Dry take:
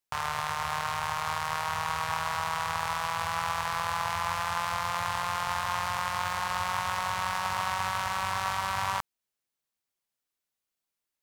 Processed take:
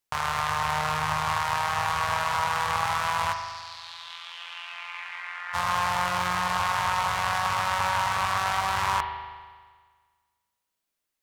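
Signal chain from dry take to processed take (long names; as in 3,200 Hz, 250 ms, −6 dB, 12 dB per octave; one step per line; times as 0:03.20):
0:03.32–0:05.53: resonant band-pass 5,300 Hz → 1,800 Hz, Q 4
spring reverb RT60 1.6 s, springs 39 ms, chirp 30 ms, DRR 5 dB
highs frequency-modulated by the lows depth 0.19 ms
level +3.5 dB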